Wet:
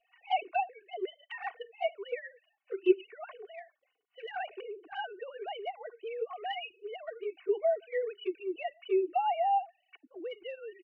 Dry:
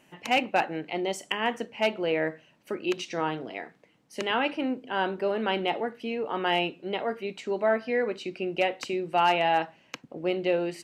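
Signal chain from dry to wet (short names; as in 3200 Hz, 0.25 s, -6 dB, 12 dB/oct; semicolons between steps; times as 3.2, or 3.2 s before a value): sine-wave speech; comb 2.7 ms, depth 77%; envelope flanger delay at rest 4.3 ms, full sweep at -18.5 dBFS; gain -6.5 dB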